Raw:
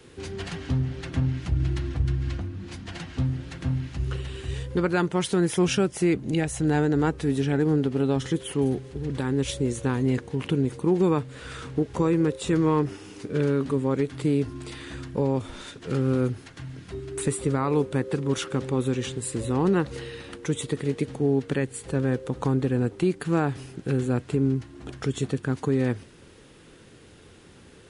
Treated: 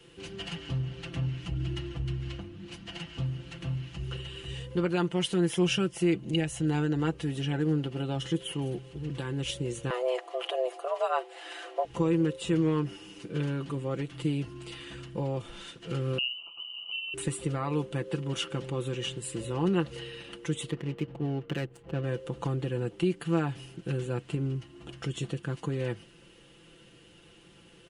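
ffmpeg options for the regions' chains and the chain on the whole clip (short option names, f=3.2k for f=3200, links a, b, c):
-filter_complex "[0:a]asettb=1/sr,asplit=3[a][b][c];[a]atrim=end=9.904[d];[b]atrim=start=9.9:end=11.85,asetpts=PTS-STARTPTS,afade=t=in:d=0.004:c=qsin,afade=t=out:st=1.946:d=0.004:c=qsin,highpass=f=220:p=1,equalizer=f=710:t=o:w=1.2:g=7,afreqshift=250[e];[c]atrim=start=11.846[f];[d][e]acrossfade=d=0.004:c1=hsin:c2=qsin[g];[g][f]acrossfade=d=0.004:c1=qsin:c2=hsin,asettb=1/sr,asplit=3[h][i][j];[h]atrim=end=16.184[k];[i]atrim=start=16.18:end=17.14,asetpts=PTS-STARTPTS,afade=t=in:d=0.004:c=qsin,afade=t=out:st=0.956:d=0.004:c=qsin,lowpass=f=2.6k:t=q:w=0.5098,lowpass=f=2.6k:t=q:w=0.6013,lowpass=f=2.6k:t=q:w=0.9,lowpass=f=2.6k:t=q:w=2.563,afreqshift=-3100,asuperstop=centerf=1800:order=8:qfactor=1.4,acompressor=threshold=-37dB:ratio=2:attack=3.2:release=140:knee=1:detection=peak[l];[j]atrim=start=17.136[m];[k][l]acrossfade=d=0.004:c1=hsin:c2=qsin[n];[n][m]acrossfade=d=0.004:c1=qsin:c2=hsin,asettb=1/sr,asplit=3[o][p][q];[o]atrim=end=20.704[r];[p]atrim=start=20.7:end=22.04,asetpts=PTS-STARTPTS,afade=t=in:d=0.004:c=qsin,afade=t=out:st=1.336:d=0.004:c=qsin,highshelf=f=9k:g=4,adynamicsmooth=sensitivity=6.5:basefreq=730[s];[q]atrim=start=22.036[t];[r][s]acrossfade=d=0.004:c1=hsin:c2=qsin[u];[u][t]acrossfade=d=0.004:c1=qsin:c2=hsin,equalizer=f=2.9k:w=5.9:g=12,aecho=1:1:5.9:0.67,volume=-7.5dB"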